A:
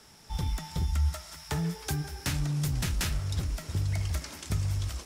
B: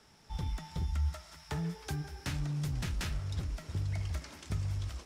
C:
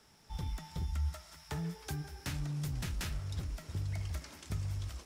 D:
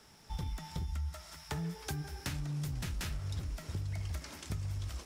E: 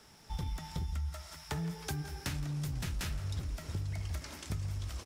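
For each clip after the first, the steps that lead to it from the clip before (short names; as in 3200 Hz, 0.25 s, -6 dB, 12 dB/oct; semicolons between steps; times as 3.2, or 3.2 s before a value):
high shelf 7200 Hz -11 dB; gain -5 dB
high shelf 11000 Hz +10 dB; gain -2.5 dB
compressor, threshold -38 dBFS, peak gain reduction 8 dB; gain +4 dB
echo 0.168 s -17 dB; gain +1 dB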